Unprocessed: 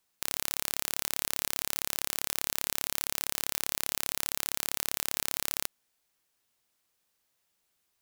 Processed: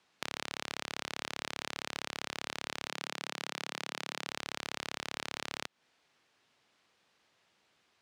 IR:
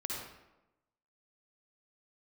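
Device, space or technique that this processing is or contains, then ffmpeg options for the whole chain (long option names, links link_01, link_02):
AM radio: -filter_complex "[0:a]highpass=110,lowpass=3800,acompressor=threshold=-43dB:ratio=6,asoftclip=type=tanh:threshold=-22.5dB,asettb=1/sr,asplit=3[link_01][link_02][link_03];[link_01]atrim=end=2.884[link_04];[link_02]atrim=start=2.88:end=4.28,asetpts=PTS-STARTPTS,afade=type=in:duration=0.004:curve=qsin,afade=type=out:start_time=1.396:duration=0.004:curve=qsin,highpass=frequency=150:width=0.5412,highpass=frequency=150:width=1.3066[link_05];[link_03]atrim=start=4.276[link_06];[link_04][link_05]acrossfade=duration=0.004:curve1=hsin:curve2=qsin[link_07];[link_07][link_06]acrossfade=duration=0.004:curve1=qsin:curve2=hsin,volume=11dB"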